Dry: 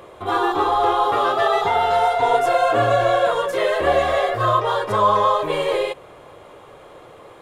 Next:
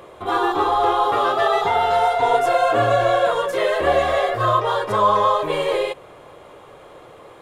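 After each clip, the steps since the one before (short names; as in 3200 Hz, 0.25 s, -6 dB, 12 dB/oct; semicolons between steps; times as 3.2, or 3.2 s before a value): notches 50/100 Hz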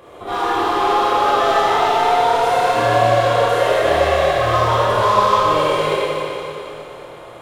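in parallel at -6 dB: wavefolder -21 dBFS; on the sum: reverb RT60 3.1 s, pre-delay 26 ms, DRR -8.5 dB; gain -6.5 dB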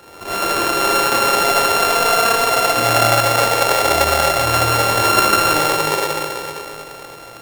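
sample sorter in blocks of 32 samples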